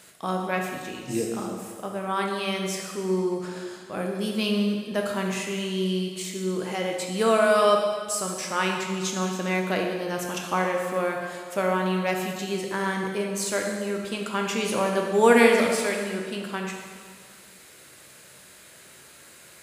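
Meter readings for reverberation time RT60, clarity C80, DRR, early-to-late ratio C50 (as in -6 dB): 1.8 s, 4.0 dB, 0.5 dB, 2.5 dB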